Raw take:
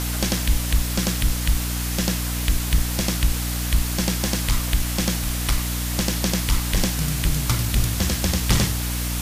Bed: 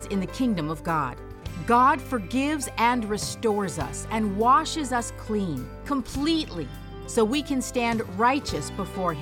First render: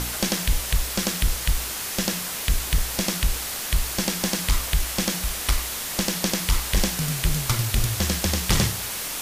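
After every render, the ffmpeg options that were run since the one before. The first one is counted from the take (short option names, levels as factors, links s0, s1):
-af "bandreject=f=60:t=h:w=4,bandreject=f=120:t=h:w=4,bandreject=f=180:t=h:w=4,bandreject=f=240:t=h:w=4,bandreject=f=300:t=h:w=4"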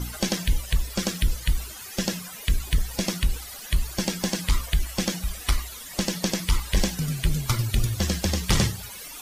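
-af "afftdn=nr=16:nf=-31"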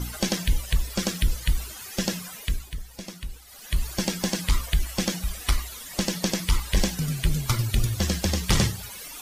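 -filter_complex "[0:a]asplit=3[s0][s1][s2];[s0]atrim=end=2.73,asetpts=PTS-STARTPTS,afade=t=out:st=2.31:d=0.42:silence=0.251189[s3];[s1]atrim=start=2.73:end=3.44,asetpts=PTS-STARTPTS,volume=0.251[s4];[s2]atrim=start=3.44,asetpts=PTS-STARTPTS,afade=t=in:d=0.42:silence=0.251189[s5];[s3][s4][s5]concat=n=3:v=0:a=1"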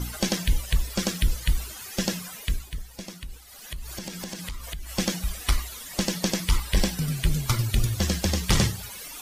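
-filter_complex "[0:a]asettb=1/sr,asplit=3[s0][s1][s2];[s0]atrim=end=3.084[s3];[s1]atrim=start=3.08:end=4.91,asetpts=PTS-STARTPTS,afade=t=in:d=0.004:c=qsin,afade=t=out:st=1.826:d=0.004:c=qsin,acompressor=threshold=0.0251:ratio=6:attack=3.2:release=140:knee=1:detection=peak[s4];[s2]atrim=start=4.906[s5];[s3][s4]acrossfade=d=0.004:c1=hsin:c2=qsin[s6];[s6][s5]acrossfade=d=0.004:c1=qsin:c2=hsin,asettb=1/sr,asplit=3[s7][s8][s9];[s7]atrim=end=6.584[s10];[s8]atrim=start=6.58:end=7.15,asetpts=PTS-STARTPTS,afade=t=in:d=0.004:c=qsin,afade=t=out:st=0.566:d=0.004:c=qsin,bandreject=f=6600:w=9.6[s11];[s9]atrim=start=7.146[s12];[s10][s11]acrossfade=d=0.004:c1=hsin:c2=qsin[s13];[s13][s12]acrossfade=d=0.004:c1=qsin:c2=hsin"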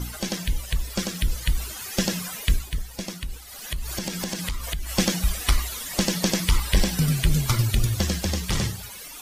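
-af "alimiter=limit=0.168:level=0:latency=1:release=122,dynaudnorm=f=300:g=11:m=2"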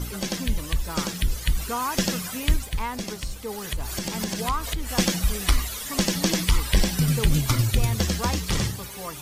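-filter_complex "[1:a]volume=0.316[s0];[0:a][s0]amix=inputs=2:normalize=0"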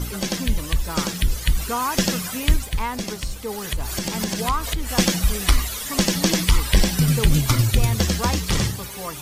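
-af "volume=1.5"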